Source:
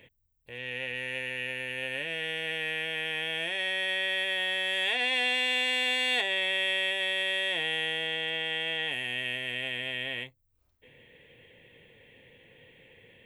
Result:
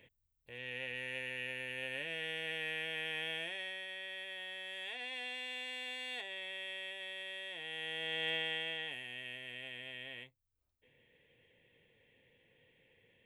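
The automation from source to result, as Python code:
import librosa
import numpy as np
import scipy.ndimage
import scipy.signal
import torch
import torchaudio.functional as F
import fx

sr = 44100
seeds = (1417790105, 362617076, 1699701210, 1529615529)

y = fx.gain(x, sr, db=fx.line((3.31, -7.0), (3.88, -15.5), (7.58, -15.5), (8.3, -3.5), (9.07, -13.0)))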